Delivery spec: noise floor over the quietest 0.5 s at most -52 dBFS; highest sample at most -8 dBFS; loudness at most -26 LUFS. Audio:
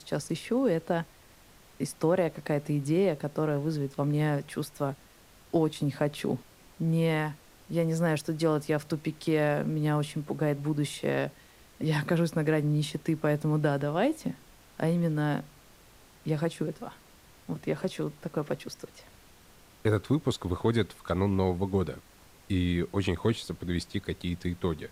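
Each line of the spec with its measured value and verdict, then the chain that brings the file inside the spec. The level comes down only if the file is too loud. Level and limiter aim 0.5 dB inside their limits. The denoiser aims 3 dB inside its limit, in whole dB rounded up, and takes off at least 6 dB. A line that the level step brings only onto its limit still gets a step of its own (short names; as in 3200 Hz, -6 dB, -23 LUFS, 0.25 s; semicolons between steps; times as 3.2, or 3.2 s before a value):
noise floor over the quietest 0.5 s -56 dBFS: OK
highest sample -14.0 dBFS: OK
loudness -30.0 LUFS: OK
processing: none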